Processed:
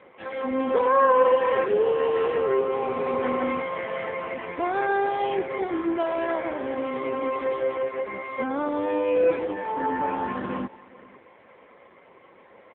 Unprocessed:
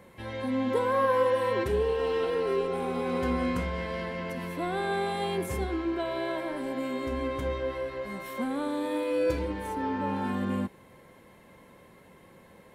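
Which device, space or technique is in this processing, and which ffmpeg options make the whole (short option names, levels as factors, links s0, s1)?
satellite phone: -af "highpass=360,lowpass=3100,aecho=1:1:504:0.0891,volume=2.51" -ar 8000 -c:a libopencore_amrnb -b:a 5900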